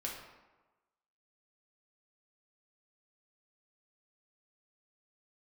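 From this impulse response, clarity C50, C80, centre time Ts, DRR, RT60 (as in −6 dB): 3.5 dB, 6.0 dB, 48 ms, −3.0 dB, 1.2 s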